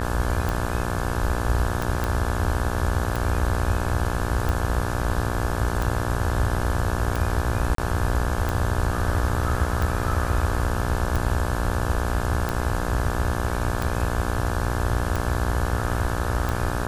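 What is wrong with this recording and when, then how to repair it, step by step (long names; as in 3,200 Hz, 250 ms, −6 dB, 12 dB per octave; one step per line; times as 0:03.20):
mains buzz 60 Hz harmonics 29 −28 dBFS
scratch tick 45 rpm
0:02.04: click
0:07.75–0:07.78: drop-out 33 ms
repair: click removal
hum removal 60 Hz, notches 29
repair the gap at 0:07.75, 33 ms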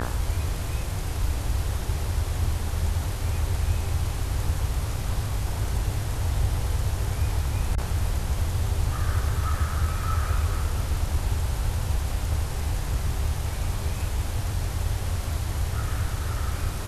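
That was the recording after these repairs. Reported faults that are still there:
none of them is left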